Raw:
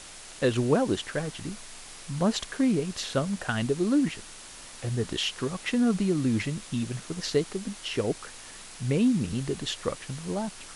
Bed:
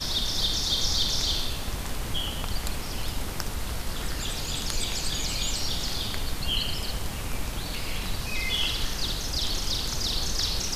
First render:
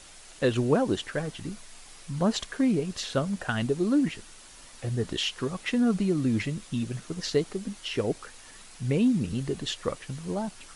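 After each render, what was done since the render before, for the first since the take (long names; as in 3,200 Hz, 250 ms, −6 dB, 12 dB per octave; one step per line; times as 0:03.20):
broadband denoise 6 dB, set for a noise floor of −45 dBFS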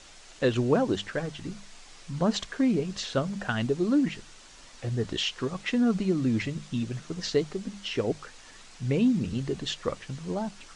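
low-pass filter 7,500 Hz 24 dB per octave
mains-hum notches 50/100/150/200 Hz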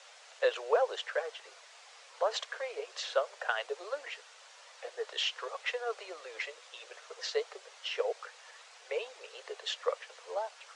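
Butterworth high-pass 460 Hz 72 dB per octave
high-shelf EQ 4,400 Hz −8.5 dB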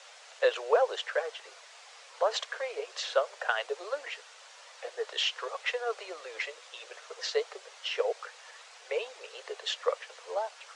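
level +3 dB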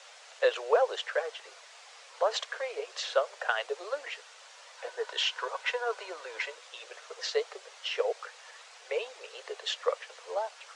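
0:04.77–0:06.55: hollow resonant body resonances 970/1,500 Hz, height 12 dB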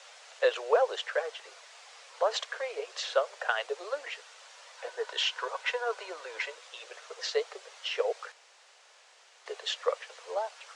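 0:08.32–0:09.46: fill with room tone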